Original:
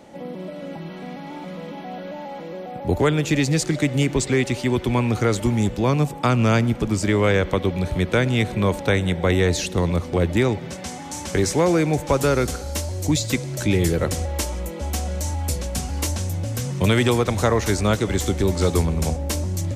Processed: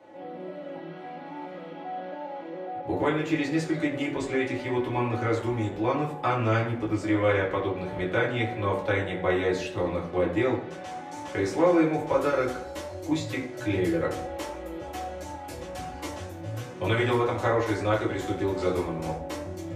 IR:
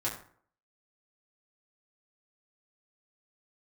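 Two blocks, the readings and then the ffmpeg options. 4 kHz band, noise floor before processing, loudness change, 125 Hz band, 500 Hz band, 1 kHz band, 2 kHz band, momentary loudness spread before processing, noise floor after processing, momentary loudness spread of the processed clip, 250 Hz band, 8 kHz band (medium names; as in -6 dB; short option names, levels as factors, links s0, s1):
-10.5 dB, -35 dBFS, -6.5 dB, -11.0 dB, -4.0 dB, -2.5 dB, -4.0 dB, 15 LU, -40 dBFS, 13 LU, -6.0 dB, -17.5 dB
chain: -filter_complex "[0:a]acrossover=split=250 3600:gain=0.224 1 0.224[s0][s1][s2];[s0][s1][s2]amix=inputs=3:normalize=0[s3];[1:a]atrim=start_sample=2205[s4];[s3][s4]afir=irnorm=-1:irlink=0,volume=0.376"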